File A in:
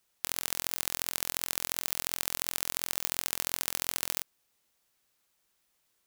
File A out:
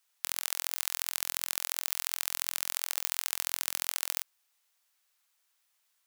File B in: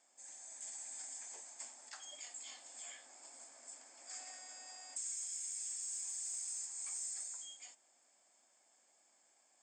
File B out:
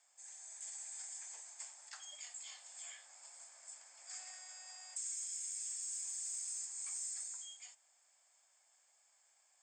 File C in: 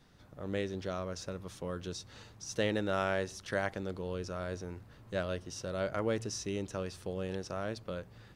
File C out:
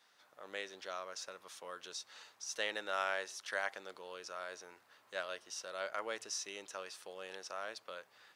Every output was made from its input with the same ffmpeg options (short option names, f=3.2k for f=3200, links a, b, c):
-af "highpass=860"